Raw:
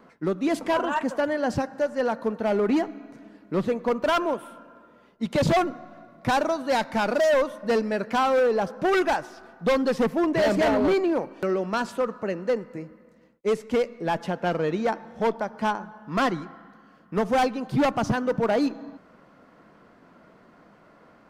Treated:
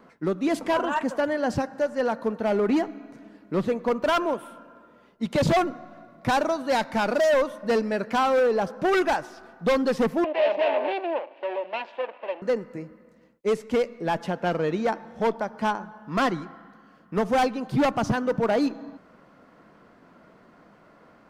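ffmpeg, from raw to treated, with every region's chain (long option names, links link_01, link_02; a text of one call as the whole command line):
ffmpeg -i in.wav -filter_complex "[0:a]asettb=1/sr,asplit=3[link_01][link_02][link_03];[link_01]atrim=end=10.244[link_04];[link_02]atrim=start=10.24:end=12.42,asetpts=PTS-STARTPTS,afade=type=in:duration=0.004:curve=qsin,afade=type=out:start_time=2.176:duration=0.004:curve=qsin,aeval=exprs='max(val(0),0)':channel_layout=same,highpass=frequency=360:width=0.5412,highpass=frequency=360:width=1.3066,equalizer=frequency=420:width_type=q:width=4:gain=-6,equalizer=frequency=590:width_type=q:width=4:gain=9,equalizer=frequency=900:width_type=q:width=4:gain=4,equalizer=frequency=1300:width_type=q:width=4:gain=-10,equalizer=frequency=2700:width_type=q:width=4:gain=7,lowpass=frequency=3400:width=0.5412,lowpass=frequency=3400:width=1.3066[link_05];[link_03]atrim=start=12.416[link_06];[link_04][link_05]acrossfade=duration=0.004:curve1=hsin:curve2=qsin[link_07];[link_07][link_06]acrossfade=duration=0.004:curve1=qsin:curve2=hsin" out.wav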